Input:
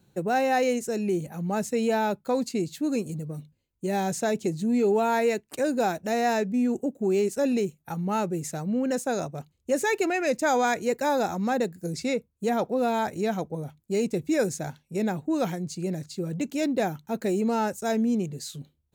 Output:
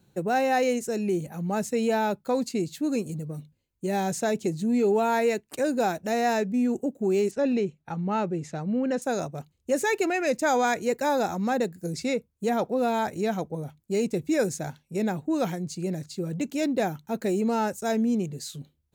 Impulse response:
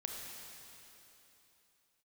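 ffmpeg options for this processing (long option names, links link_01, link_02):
-filter_complex "[0:a]asettb=1/sr,asplit=3[link_01][link_02][link_03];[link_01]atrim=end=7.314[link_04];[link_02]atrim=start=7.31:end=9.02,asetpts=PTS-STARTPTS,afade=type=in:duration=0.004:curve=qsin,afade=type=out:start_time=1.706:duration=0.004:curve=qsin,lowpass=4000[link_05];[link_03]atrim=start=9.016[link_06];[link_04][link_05]acrossfade=duration=0.004:curve1=hsin:curve2=qsin[link_07];[link_07][link_06]acrossfade=duration=0.004:curve1=qsin:curve2=hsin"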